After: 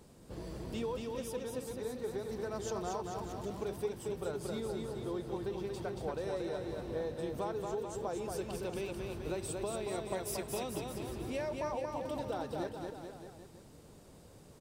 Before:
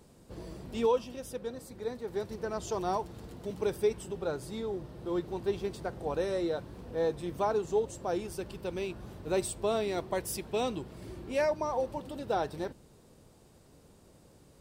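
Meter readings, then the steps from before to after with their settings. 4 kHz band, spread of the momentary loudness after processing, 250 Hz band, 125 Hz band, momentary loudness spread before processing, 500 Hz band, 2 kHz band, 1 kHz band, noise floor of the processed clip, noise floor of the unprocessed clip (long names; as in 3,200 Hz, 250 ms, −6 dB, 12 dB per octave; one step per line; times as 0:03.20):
−3.5 dB, 10 LU, −3.0 dB, −1.0 dB, 11 LU, −5.5 dB, −5.0 dB, −6.0 dB, −57 dBFS, −59 dBFS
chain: downward compressor, threshold −36 dBFS, peak gain reduction 13 dB
on a send: bouncing-ball delay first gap 230 ms, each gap 0.9×, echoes 5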